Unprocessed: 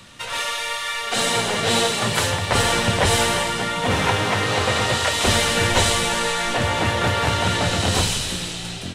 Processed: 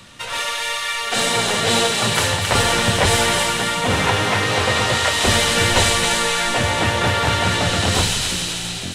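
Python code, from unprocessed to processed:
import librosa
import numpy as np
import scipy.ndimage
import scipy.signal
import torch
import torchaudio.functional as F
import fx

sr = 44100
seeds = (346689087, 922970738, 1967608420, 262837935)

y = fx.echo_wet_highpass(x, sr, ms=269, feedback_pct=48, hz=1500.0, wet_db=-4.5)
y = F.gain(torch.from_numpy(y), 1.5).numpy()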